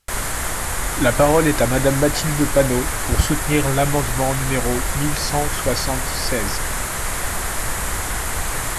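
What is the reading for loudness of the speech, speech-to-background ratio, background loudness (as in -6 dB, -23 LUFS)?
-21.0 LUFS, 2.5 dB, -23.5 LUFS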